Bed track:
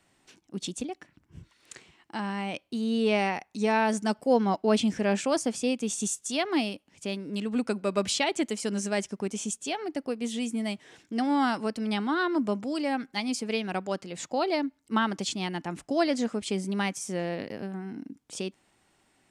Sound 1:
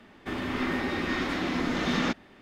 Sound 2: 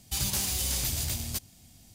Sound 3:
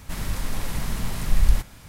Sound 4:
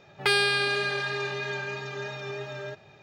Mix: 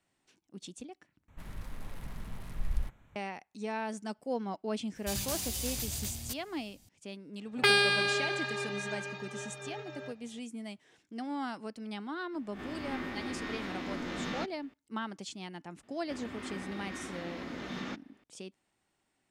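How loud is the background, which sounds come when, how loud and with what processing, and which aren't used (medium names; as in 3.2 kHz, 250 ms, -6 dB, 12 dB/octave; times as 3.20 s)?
bed track -11.5 dB
1.28 s: replace with 3 -14.5 dB + local Wiener filter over 9 samples
4.95 s: add 2 -6.5 dB
7.38 s: add 4 -0.5 dB + upward expansion, over -41 dBFS
12.33 s: add 1 -11 dB + reverse spectral sustain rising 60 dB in 0.37 s
15.83 s: add 1 -13 dB + high-pass 42 Hz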